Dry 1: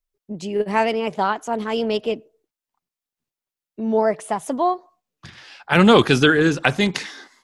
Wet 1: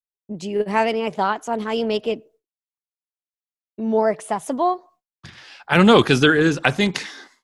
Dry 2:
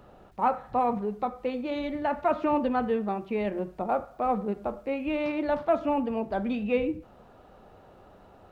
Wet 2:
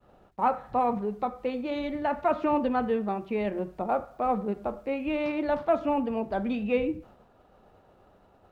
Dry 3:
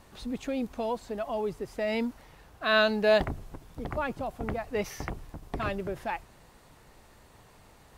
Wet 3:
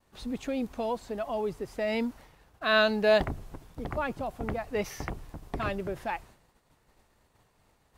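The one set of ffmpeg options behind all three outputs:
-af "agate=range=-33dB:threshold=-47dB:ratio=3:detection=peak"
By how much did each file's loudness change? 0.0, 0.0, 0.0 LU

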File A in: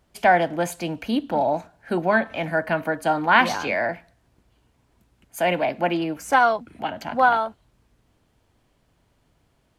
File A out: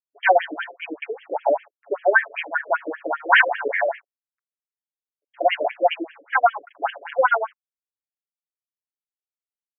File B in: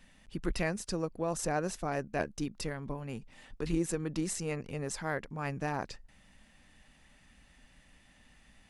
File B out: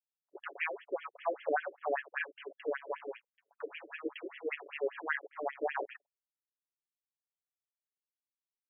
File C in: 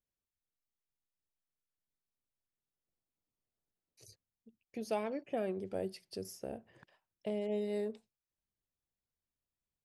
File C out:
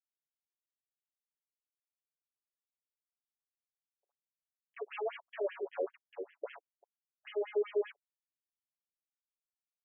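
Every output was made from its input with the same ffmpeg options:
-af "acrusher=bits=6:mix=0:aa=0.5,aecho=1:1:7.1:0.82,afftfilt=real='re*between(b*sr/1024,420*pow(2400/420,0.5+0.5*sin(2*PI*5.1*pts/sr))/1.41,420*pow(2400/420,0.5+0.5*sin(2*PI*5.1*pts/sr))*1.41)':imag='im*between(b*sr/1024,420*pow(2400/420,0.5+0.5*sin(2*PI*5.1*pts/sr))/1.41,420*pow(2400/420,0.5+0.5*sin(2*PI*5.1*pts/sr))*1.41)':win_size=1024:overlap=0.75,volume=4dB"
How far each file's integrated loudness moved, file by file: +0.5, -2.5, +0.5 LU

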